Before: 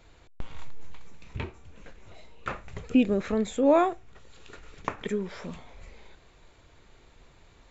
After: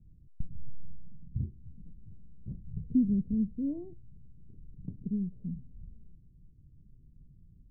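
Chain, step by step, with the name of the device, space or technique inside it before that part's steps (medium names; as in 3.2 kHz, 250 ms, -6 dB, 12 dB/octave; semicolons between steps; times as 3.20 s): the neighbour's flat through the wall (low-pass 220 Hz 24 dB/octave; peaking EQ 150 Hz +6.5 dB 0.93 oct)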